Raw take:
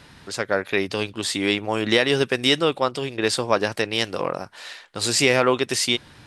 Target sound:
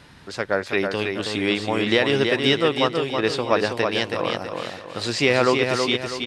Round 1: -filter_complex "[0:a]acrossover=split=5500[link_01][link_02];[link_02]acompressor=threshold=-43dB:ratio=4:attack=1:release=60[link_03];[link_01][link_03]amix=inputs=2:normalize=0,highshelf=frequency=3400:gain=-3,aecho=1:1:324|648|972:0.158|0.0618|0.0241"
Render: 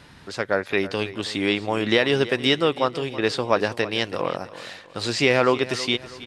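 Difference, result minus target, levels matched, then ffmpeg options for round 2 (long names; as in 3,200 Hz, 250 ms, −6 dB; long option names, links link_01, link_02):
echo-to-direct −11 dB
-filter_complex "[0:a]acrossover=split=5500[link_01][link_02];[link_02]acompressor=threshold=-43dB:ratio=4:attack=1:release=60[link_03];[link_01][link_03]amix=inputs=2:normalize=0,highshelf=frequency=3400:gain=-3,aecho=1:1:324|648|972|1296|1620:0.562|0.219|0.0855|0.0334|0.013"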